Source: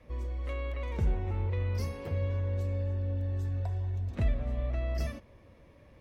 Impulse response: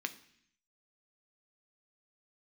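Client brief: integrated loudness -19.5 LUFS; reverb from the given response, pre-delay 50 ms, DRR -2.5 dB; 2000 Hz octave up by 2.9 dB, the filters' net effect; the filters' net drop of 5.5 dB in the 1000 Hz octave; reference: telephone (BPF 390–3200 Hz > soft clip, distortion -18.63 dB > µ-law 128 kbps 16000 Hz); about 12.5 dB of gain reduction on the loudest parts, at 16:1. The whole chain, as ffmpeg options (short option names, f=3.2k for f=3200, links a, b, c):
-filter_complex "[0:a]equalizer=f=1k:t=o:g=-8.5,equalizer=f=2k:t=o:g=6,acompressor=threshold=-35dB:ratio=16,asplit=2[a][b];[1:a]atrim=start_sample=2205,adelay=50[c];[b][c]afir=irnorm=-1:irlink=0,volume=1dB[d];[a][d]amix=inputs=2:normalize=0,highpass=390,lowpass=3.2k,asoftclip=threshold=-38.5dB,volume=29.5dB" -ar 16000 -c:a pcm_mulaw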